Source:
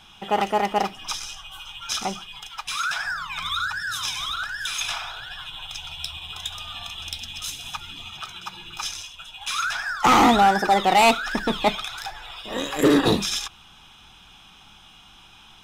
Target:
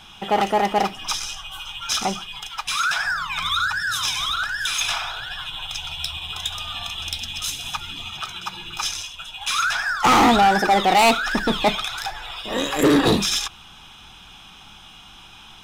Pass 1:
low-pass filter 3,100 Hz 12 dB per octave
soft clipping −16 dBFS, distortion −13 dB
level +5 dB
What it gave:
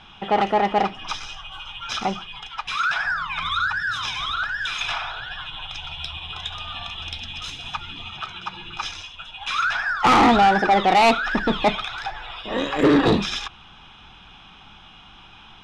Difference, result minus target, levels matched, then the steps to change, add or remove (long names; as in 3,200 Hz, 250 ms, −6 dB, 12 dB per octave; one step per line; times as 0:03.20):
4,000 Hz band −3.5 dB
remove: low-pass filter 3,100 Hz 12 dB per octave